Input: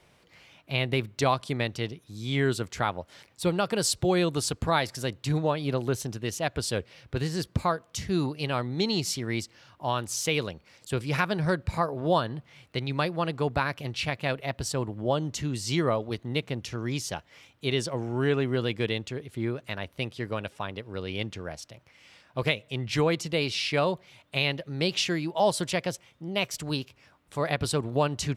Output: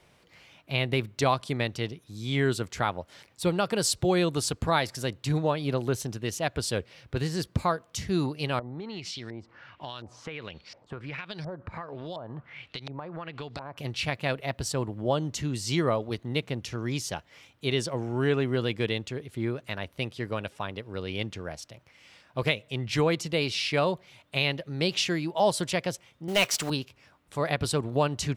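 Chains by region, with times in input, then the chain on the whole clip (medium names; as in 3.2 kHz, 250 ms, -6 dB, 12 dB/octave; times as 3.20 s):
8.59–13.77 s: treble shelf 3 kHz +11.5 dB + LFO low-pass saw up 1.4 Hz 620–5600 Hz + compression 8:1, threshold -34 dBFS
26.28–26.70 s: block-companded coder 5-bit + overdrive pedal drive 17 dB, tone 7.3 kHz, clips at -12.5 dBFS
whole clip: none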